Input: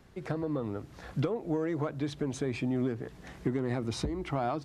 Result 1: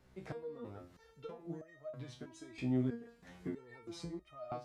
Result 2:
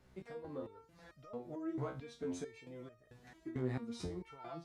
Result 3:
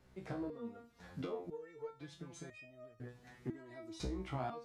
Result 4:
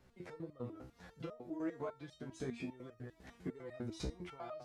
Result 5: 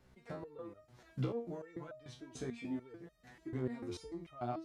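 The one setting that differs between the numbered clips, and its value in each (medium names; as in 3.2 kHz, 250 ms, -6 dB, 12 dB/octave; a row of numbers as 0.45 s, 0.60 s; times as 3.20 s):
resonator arpeggio, rate: 3.1 Hz, 4.5 Hz, 2 Hz, 10 Hz, 6.8 Hz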